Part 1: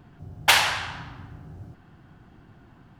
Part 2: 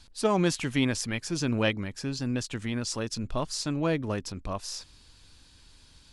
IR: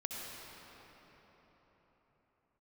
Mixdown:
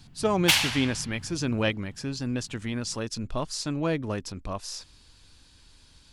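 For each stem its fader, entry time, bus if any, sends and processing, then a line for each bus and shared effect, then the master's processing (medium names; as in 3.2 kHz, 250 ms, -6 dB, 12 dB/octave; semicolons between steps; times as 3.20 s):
-1.5 dB, 0.00 s, no send, high-order bell 740 Hz -9.5 dB 2.8 oct
0.0 dB, 0.00 s, no send, none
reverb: none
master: none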